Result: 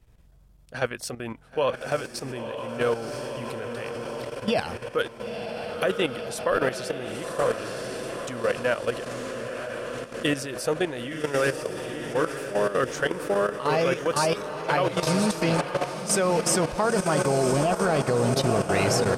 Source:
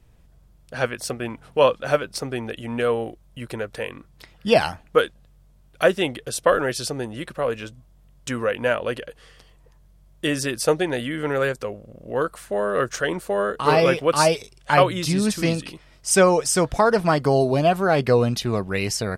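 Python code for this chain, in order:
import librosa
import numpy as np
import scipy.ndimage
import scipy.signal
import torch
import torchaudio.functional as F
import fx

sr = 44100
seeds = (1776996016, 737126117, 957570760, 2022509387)

p1 = x + fx.echo_diffused(x, sr, ms=980, feedback_pct=64, wet_db=-6.0, dry=0)
y = fx.level_steps(p1, sr, step_db=11)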